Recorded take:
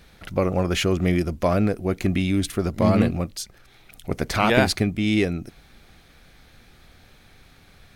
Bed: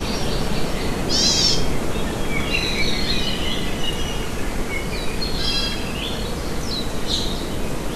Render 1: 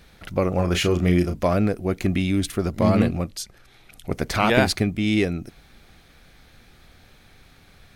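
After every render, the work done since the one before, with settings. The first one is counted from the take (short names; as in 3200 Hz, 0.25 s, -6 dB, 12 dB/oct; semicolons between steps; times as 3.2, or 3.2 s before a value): 0.55–1.46 doubler 34 ms -7 dB; 3.05–4.13 brick-wall FIR low-pass 14000 Hz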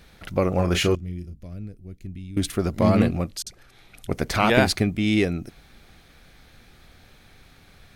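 0.95–2.37 passive tone stack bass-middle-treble 10-0-1; 3.42–4.09 dispersion highs, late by 46 ms, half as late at 410 Hz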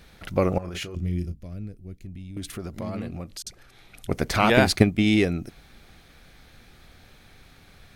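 0.58–1.32 negative-ratio compressor -31 dBFS; 2.01–3.46 compressor 2.5:1, threshold -35 dBFS; 4.76–5.17 transient shaper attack +7 dB, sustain -3 dB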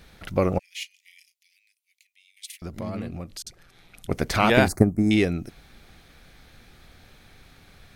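0.59–2.62 steep high-pass 2000 Hz 72 dB/oct; 3.43–4.1 AM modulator 170 Hz, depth 35%; 4.68–5.11 Butterworth band-stop 3100 Hz, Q 0.51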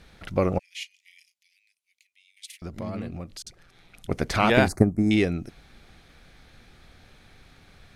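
Chebyshev low-pass 12000 Hz, order 2; high shelf 9600 Hz -9 dB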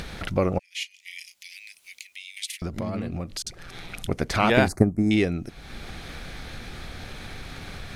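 upward compressor, threshold -23 dBFS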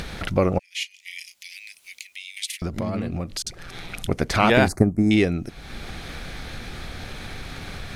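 gain +3 dB; limiter -3 dBFS, peak gain reduction 2.5 dB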